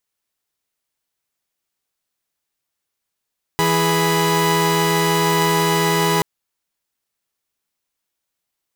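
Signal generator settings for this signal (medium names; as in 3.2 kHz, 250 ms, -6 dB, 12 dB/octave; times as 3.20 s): chord E3/G#4/B5 saw, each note -17 dBFS 2.63 s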